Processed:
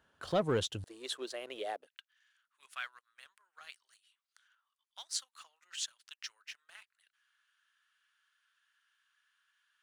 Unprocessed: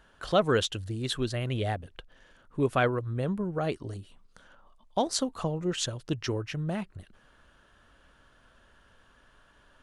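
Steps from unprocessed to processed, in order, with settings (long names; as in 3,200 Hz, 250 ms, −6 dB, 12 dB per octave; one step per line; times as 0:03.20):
dynamic equaliser 1,900 Hz, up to −4 dB, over −41 dBFS, Q 0.83
high-pass filter 64 Hz 24 dB per octave, from 0:00.84 400 Hz, from 0:01.87 1,500 Hz
leveller curve on the samples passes 1
level −8.5 dB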